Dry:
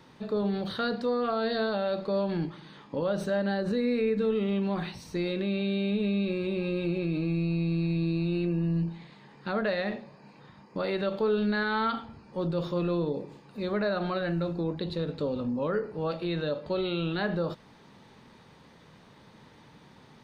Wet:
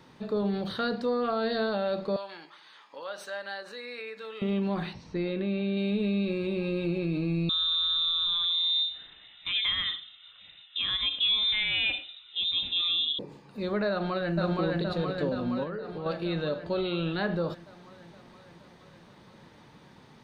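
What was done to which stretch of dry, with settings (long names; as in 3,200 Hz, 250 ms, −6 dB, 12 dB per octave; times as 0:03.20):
0:02.16–0:04.42: high-pass filter 1,000 Hz
0:04.93–0:05.77: high-frequency loss of the air 190 metres
0:07.49–0:13.19: voice inversion scrambler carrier 3,800 Hz
0:13.90–0:14.35: delay throw 470 ms, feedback 70%, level −1 dB
0:15.63–0:16.06: downward compressor, threshold −32 dBFS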